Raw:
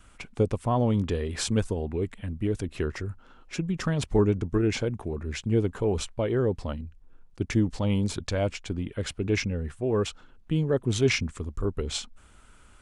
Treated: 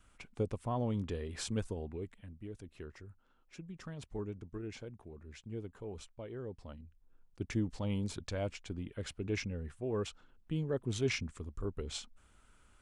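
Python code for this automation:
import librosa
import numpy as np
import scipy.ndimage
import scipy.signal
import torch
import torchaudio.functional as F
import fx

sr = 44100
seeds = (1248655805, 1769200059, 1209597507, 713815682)

y = fx.gain(x, sr, db=fx.line((1.82, -10.5), (2.42, -18.5), (6.44, -18.5), (7.42, -10.0)))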